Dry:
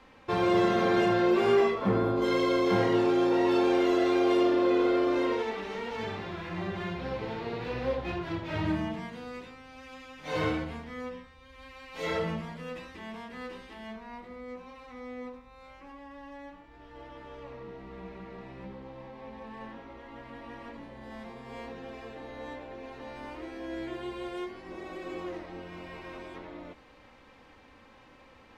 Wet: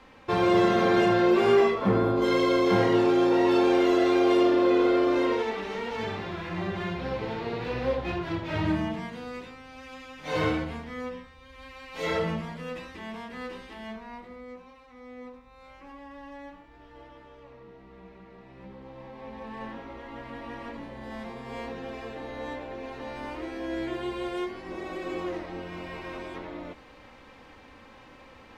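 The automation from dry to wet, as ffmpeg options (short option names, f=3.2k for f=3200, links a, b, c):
-af "volume=21.5dB,afade=t=out:st=13.91:d=0.97:silence=0.354813,afade=t=in:st=14.88:d=1.08:silence=0.398107,afade=t=out:st=16.48:d=0.87:silence=0.421697,afade=t=in:st=18.45:d=1.21:silence=0.298538"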